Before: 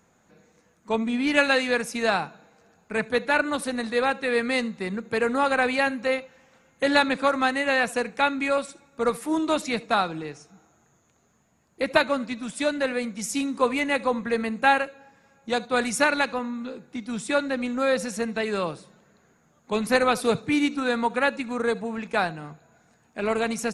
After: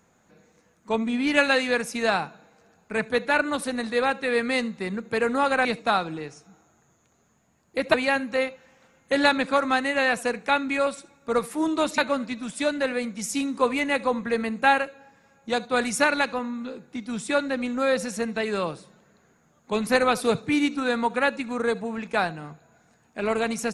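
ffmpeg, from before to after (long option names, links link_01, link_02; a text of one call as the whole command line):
ffmpeg -i in.wav -filter_complex "[0:a]asplit=4[link_01][link_02][link_03][link_04];[link_01]atrim=end=5.652[link_05];[link_02]atrim=start=9.688:end=11.982[link_06];[link_03]atrim=start=5.648:end=9.692[link_07];[link_04]atrim=start=11.978[link_08];[link_05][link_06]acrossfade=duration=0.004:curve1=hsin:curve2=hsin[link_09];[link_09][link_07]acrossfade=duration=0.004:curve1=hsin:curve2=hsin[link_10];[link_10][link_08]acrossfade=duration=0.004:curve1=hsin:curve2=hsin" out.wav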